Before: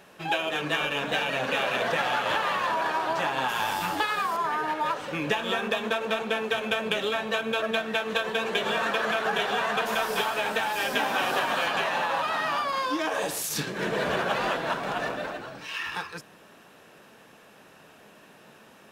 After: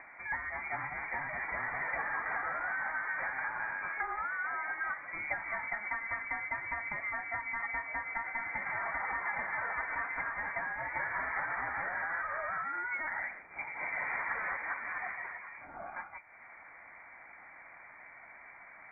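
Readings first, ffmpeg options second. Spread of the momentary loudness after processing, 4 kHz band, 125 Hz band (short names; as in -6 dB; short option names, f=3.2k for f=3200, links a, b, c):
17 LU, under -40 dB, -15.0 dB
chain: -af "acompressor=mode=upward:threshold=-33dB:ratio=2.5,lowpass=f=2.1k:t=q:w=0.5098,lowpass=f=2.1k:t=q:w=0.6013,lowpass=f=2.1k:t=q:w=0.9,lowpass=f=2.1k:t=q:w=2.563,afreqshift=-2500,volume=-8.5dB"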